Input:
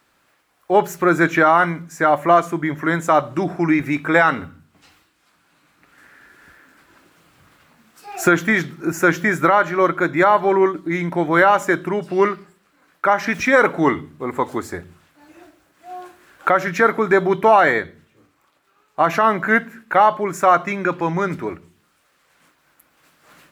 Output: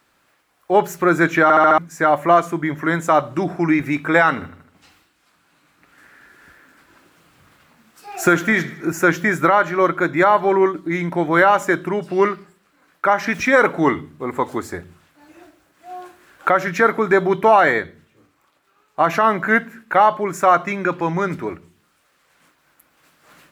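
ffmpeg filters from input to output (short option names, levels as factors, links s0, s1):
-filter_complex "[0:a]asettb=1/sr,asplit=3[s0][s1][s2];[s0]atrim=end=4.294[s3];[s1]atrim=start=4.29:end=8.93,asetpts=PTS-STARTPTS,afade=t=in:d=0.004:c=qsin,afade=t=out:st=4.636:d=0.004:c=qsin,aecho=1:1:77|154|231|308|385:0.15|0.0823|0.0453|0.0249|0.0137,atrim=end_sample=204624[s4];[s2]atrim=start=8.926[s5];[s3][s4]acrossfade=d=0.004:c1=hsin:c2=qsin[s6];[s6][s5]acrossfade=d=0.004:c1=qsin:c2=hsin,asplit=6[s7][s8][s9][s10][s11][s12];[s7]atrim=end=1.502[s13];[s8]atrim=start=1.428:end=1.502[s14];[s9]atrim=start=1.428:end=1.502[s15];[s10]atrim=start=1.428:end=1.502[s16];[s11]atrim=start=1.428:end=1.502[s17];[s12]atrim=start=1.778[s18];[s13][s14]acrossfade=d=0.004:c1=hsin:c2=hsin[s19];[s19][s15]acrossfade=d=0.004:c1=hsin:c2=hsin[s20];[s20][s16]acrossfade=d=0.004:c1=hsin:c2=hsin[s21];[s21][s17]acrossfade=d=0.004:c1=hsin:c2=hsin[s22];[s22][s18]acrossfade=d=0.004:c1=hsin:c2=hsin"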